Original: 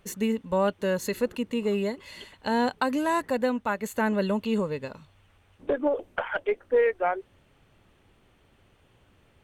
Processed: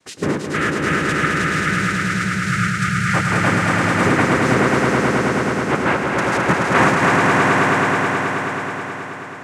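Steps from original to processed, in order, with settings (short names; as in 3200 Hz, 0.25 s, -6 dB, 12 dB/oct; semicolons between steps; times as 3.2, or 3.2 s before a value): envelope phaser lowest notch 160 Hz, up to 3000 Hz, full sweep at -21 dBFS; noise vocoder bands 3; spectral gain 0.45–3.14, 200–1200 Hz -27 dB; swelling echo 0.107 s, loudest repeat 5, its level -3.5 dB; on a send at -16.5 dB: reverb, pre-delay 3 ms; on the sum: gain +6 dB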